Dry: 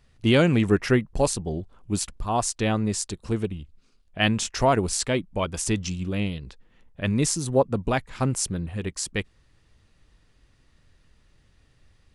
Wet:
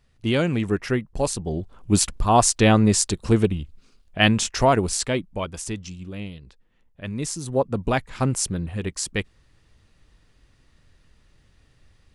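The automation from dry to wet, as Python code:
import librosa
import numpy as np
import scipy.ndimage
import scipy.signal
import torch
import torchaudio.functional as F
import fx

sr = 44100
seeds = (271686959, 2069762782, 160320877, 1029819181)

y = fx.gain(x, sr, db=fx.line((1.11, -3.0), (1.97, 8.0), (3.46, 8.0), (5.24, 0.0), (5.84, -7.0), (7.1, -7.0), (7.9, 2.0)))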